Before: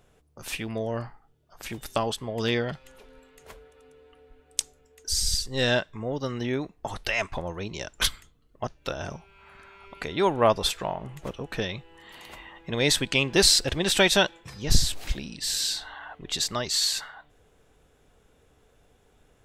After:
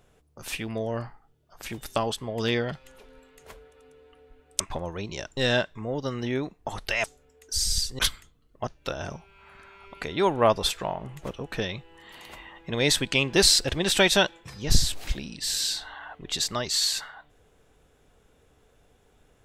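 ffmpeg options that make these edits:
-filter_complex "[0:a]asplit=5[s0][s1][s2][s3][s4];[s0]atrim=end=4.602[s5];[s1]atrim=start=7.218:end=7.992[s6];[s2]atrim=start=5.548:end=7.222[s7];[s3]atrim=start=4.598:end=5.552[s8];[s4]atrim=start=7.988[s9];[s5][s6]acrossfade=d=0.004:c1=hsin:c2=hsin[s10];[s10][s7]acrossfade=d=0.004:c1=hsin:c2=hsin[s11];[s11][s8]acrossfade=d=0.004:c1=hsin:c2=hsin[s12];[s12][s9]acrossfade=d=0.004:c1=hsin:c2=hsin"

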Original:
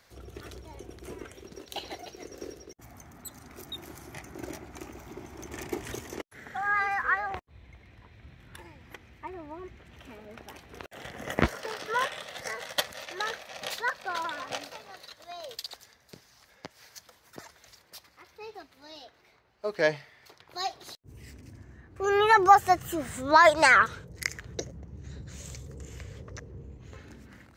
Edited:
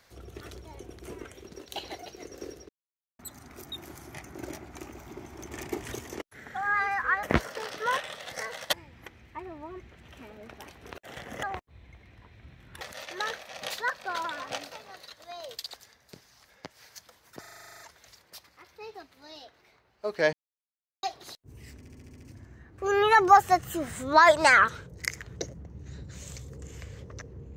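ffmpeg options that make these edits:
-filter_complex "[0:a]asplit=25[s0][s1][s2][s3][s4][s5][s6][s7][s8][s9][s10][s11][s12][s13][s14][s15][s16][s17][s18][s19][s20][s21][s22][s23][s24];[s0]atrim=end=2.69,asetpts=PTS-STARTPTS,afade=t=out:st=2.686:d=0.004:c=hsin[s25];[s1]atrim=start=2.69:end=3.19,asetpts=PTS-STARTPTS,volume=0[s26];[s2]atrim=start=3.19:end=7.232,asetpts=PTS-STARTPTS,afade=t=in:d=0.004:c=hsin[s27];[s3]atrim=start=11.308:end=12.812[s28];[s4]atrim=start=8.608:end=11.312[s29];[s5]atrim=start=7.228:end=8.612[s30];[s6]atrim=start=12.808:end=17.442[s31];[s7]atrim=start=17.398:end=17.442[s32];[s8]atrim=start=17.398:end=17.442[s33];[s9]atrim=start=17.398:end=17.442[s34];[s10]atrim=start=17.398:end=17.442[s35];[s11]atrim=start=17.398:end=17.442[s36];[s12]atrim=start=17.398:end=17.442[s37];[s13]atrim=start=17.398:end=17.442[s38];[s14]atrim=start=17.398:end=17.442[s39];[s15]atrim=start=17.398:end=17.442[s40];[s16]atrim=start=17.398:end=19.93,asetpts=PTS-STARTPTS,afade=t=out:st=2.528:d=0.004:c=hsin[s41];[s17]atrim=start=19.93:end=20.63,asetpts=PTS-STARTPTS,volume=0[s42];[s18]atrim=start=20.63:end=21.452,asetpts=PTS-STARTPTS,afade=t=in:d=0.004:c=hsin[s43];[s19]atrim=start=21.378:end=21.452[s44];[s20]atrim=start=21.378:end=21.452[s45];[s21]atrim=start=21.378:end=21.452[s46];[s22]atrim=start=21.378:end=21.452[s47];[s23]atrim=start=21.378:end=21.452[s48];[s24]atrim=start=21.378[s49];[s25][s26][s27]concat=n=3:v=0:a=1[s50];[s50][s28]acrossfade=d=0.004:c1=hsin:c2=hsin[s51];[s51][s29]acrossfade=d=0.004:c1=hsin:c2=hsin[s52];[s52][s30]acrossfade=d=0.004:c1=hsin:c2=hsin[s53];[s53][s31]acrossfade=d=0.004:c1=hsin:c2=hsin[s54];[s54][s32]acrossfade=d=0.004:c1=hsin:c2=hsin[s55];[s55][s33]acrossfade=d=0.004:c1=hsin:c2=hsin[s56];[s56][s34]acrossfade=d=0.004:c1=hsin:c2=hsin[s57];[s57][s35]acrossfade=d=0.004:c1=hsin:c2=hsin[s58];[s58][s36]acrossfade=d=0.004:c1=hsin:c2=hsin[s59];[s59][s37]acrossfade=d=0.004:c1=hsin:c2=hsin[s60];[s60][s38]acrossfade=d=0.004:c1=hsin:c2=hsin[s61];[s61][s39]acrossfade=d=0.004:c1=hsin:c2=hsin[s62];[s62][s40]acrossfade=d=0.004:c1=hsin:c2=hsin[s63];[s41][s42][s43]concat=n=3:v=0:a=1[s64];[s63][s64]acrossfade=d=0.004:c1=hsin:c2=hsin[s65];[s65][s44]acrossfade=d=0.004:c1=hsin:c2=hsin[s66];[s66][s45]acrossfade=d=0.004:c1=hsin:c2=hsin[s67];[s67][s46]acrossfade=d=0.004:c1=hsin:c2=hsin[s68];[s68][s47]acrossfade=d=0.004:c1=hsin:c2=hsin[s69];[s69][s48]acrossfade=d=0.004:c1=hsin:c2=hsin[s70];[s70][s49]acrossfade=d=0.004:c1=hsin:c2=hsin"

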